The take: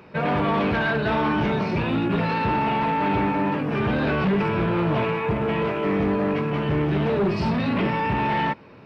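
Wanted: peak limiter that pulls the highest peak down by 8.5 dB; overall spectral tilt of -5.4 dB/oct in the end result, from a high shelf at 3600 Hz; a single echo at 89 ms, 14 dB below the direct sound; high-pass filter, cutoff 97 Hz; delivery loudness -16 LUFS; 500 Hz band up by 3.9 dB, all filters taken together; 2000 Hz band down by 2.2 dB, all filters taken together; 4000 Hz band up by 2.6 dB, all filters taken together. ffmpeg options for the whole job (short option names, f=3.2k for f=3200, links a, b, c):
-af "highpass=97,equalizer=f=500:t=o:g=5,equalizer=f=2k:t=o:g=-4,highshelf=f=3.6k:g=-5,equalizer=f=4k:t=o:g=8.5,alimiter=limit=-19dB:level=0:latency=1,aecho=1:1:89:0.2,volume=10.5dB"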